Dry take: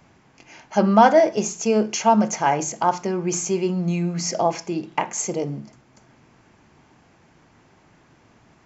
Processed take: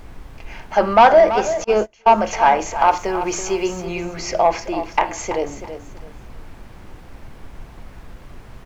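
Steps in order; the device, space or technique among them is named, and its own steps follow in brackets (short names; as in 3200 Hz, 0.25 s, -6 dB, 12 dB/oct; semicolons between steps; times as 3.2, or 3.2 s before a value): aircraft cabin announcement (BPF 480–3400 Hz; soft clip -11 dBFS, distortion -15 dB; brown noise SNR 16 dB); 2.8–3.85 high shelf 5100 Hz +6 dB; feedback echo 0.331 s, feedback 26%, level -11 dB; 1.64–2.24 gate -25 dBFS, range -29 dB; gain +7.5 dB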